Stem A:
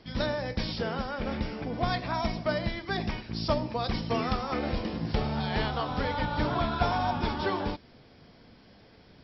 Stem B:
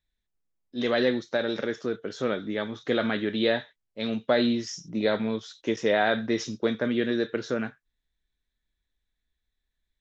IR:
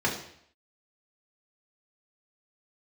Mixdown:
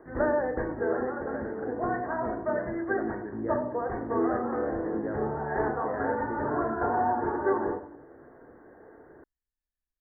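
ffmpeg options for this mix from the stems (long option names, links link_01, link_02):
-filter_complex "[0:a]lowshelf=frequency=250:width_type=q:width=3:gain=-7.5,volume=1.5dB,asplit=2[link_01][link_02];[link_02]volume=-14.5dB[link_03];[1:a]volume=-12dB,asplit=2[link_04][link_05];[link_05]apad=whole_len=407377[link_06];[link_01][link_06]sidechaincompress=threshold=-48dB:ratio=8:attack=16:release=523[link_07];[2:a]atrim=start_sample=2205[link_08];[link_03][link_08]afir=irnorm=-1:irlink=0[link_09];[link_07][link_04][link_09]amix=inputs=3:normalize=0,asuperstop=centerf=4400:order=20:qfactor=0.57"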